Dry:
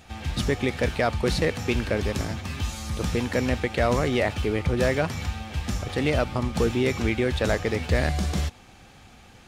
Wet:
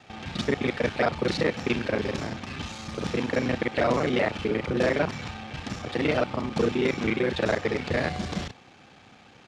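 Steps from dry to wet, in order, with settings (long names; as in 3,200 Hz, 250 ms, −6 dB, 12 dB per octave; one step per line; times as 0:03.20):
reversed piece by piece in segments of 32 ms
band-pass filter 150–5,200 Hz
pitch-shifted copies added −12 semitones −15 dB, −7 semitones −15 dB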